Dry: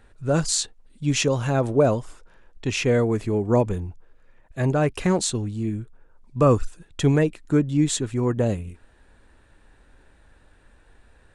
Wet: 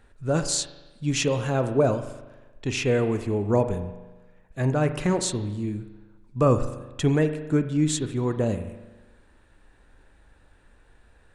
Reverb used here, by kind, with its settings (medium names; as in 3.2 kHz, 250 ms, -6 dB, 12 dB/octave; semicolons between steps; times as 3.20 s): spring tank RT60 1.2 s, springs 39 ms, chirp 55 ms, DRR 9 dB; trim -2.5 dB